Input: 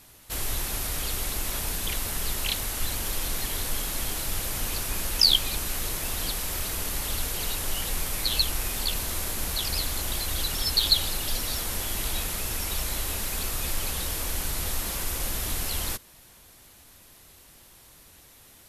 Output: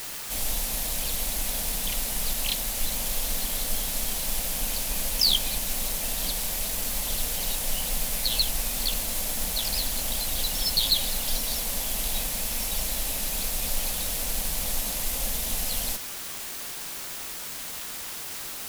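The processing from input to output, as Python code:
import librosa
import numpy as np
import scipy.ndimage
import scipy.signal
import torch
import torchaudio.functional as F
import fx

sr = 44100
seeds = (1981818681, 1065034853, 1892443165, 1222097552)

p1 = fx.fixed_phaser(x, sr, hz=360.0, stages=6)
p2 = np.sign(p1) * np.maximum(np.abs(p1) - 10.0 ** (-36.0 / 20.0), 0.0)
p3 = p1 + (p2 * 10.0 ** (-10.5 / 20.0))
p4 = fx.quant_dither(p3, sr, seeds[0], bits=6, dither='triangular')
y = np.clip(p4, -10.0 ** (-15.5 / 20.0), 10.0 ** (-15.5 / 20.0))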